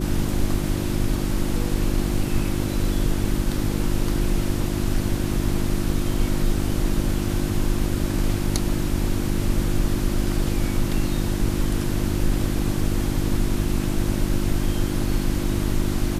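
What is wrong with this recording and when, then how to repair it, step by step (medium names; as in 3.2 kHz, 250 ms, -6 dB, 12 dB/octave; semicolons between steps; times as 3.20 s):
hum 50 Hz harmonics 7 -26 dBFS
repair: de-hum 50 Hz, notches 7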